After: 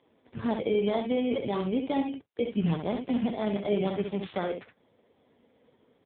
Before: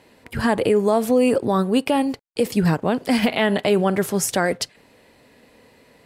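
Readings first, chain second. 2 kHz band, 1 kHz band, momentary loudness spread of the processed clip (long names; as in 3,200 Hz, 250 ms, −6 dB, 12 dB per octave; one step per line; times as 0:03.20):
−16.0 dB, −11.5 dB, 7 LU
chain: samples in bit-reversed order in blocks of 16 samples
ambience of single reflections 29 ms −13.5 dB, 65 ms −6.5 dB
level −9 dB
AMR narrowband 5.9 kbit/s 8,000 Hz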